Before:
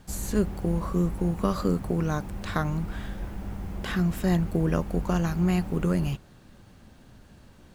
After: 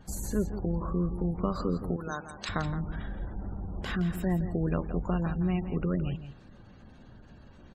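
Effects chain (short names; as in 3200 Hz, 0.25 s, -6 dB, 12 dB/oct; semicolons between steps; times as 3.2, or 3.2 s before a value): spectral gate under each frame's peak -30 dB strong; 1.96–2.49 tilt +4.5 dB/oct; in parallel at -0.5 dB: compressor, threshold -36 dBFS, peak gain reduction 16.5 dB; on the sum: echo 0.168 s -11 dB; gain -6 dB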